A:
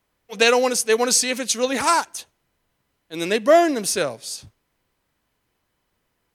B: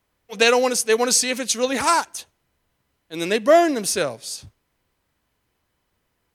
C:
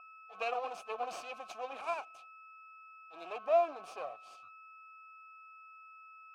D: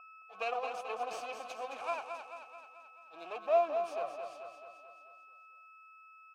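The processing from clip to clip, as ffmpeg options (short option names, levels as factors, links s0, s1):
-af "equalizer=f=76:w=1.6:g=4"
-filter_complex "[0:a]aeval=exprs='val(0)+0.0251*sin(2*PI*1300*n/s)':c=same,aeval=exprs='max(val(0),0)':c=same,asplit=3[s0][s1][s2];[s0]bandpass=f=730:t=q:w=8,volume=1[s3];[s1]bandpass=f=1090:t=q:w=8,volume=0.501[s4];[s2]bandpass=f=2440:t=q:w=8,volume=0.355[s5];[s3][s4][s5]amix=inputs=3:normalize=0,volume=0.75"
-af "aecho=1:1:218|436|654|872|1090|1308|1526:0.447|0.246|0.135|0.0743|0.0409|0.0225|0.0124"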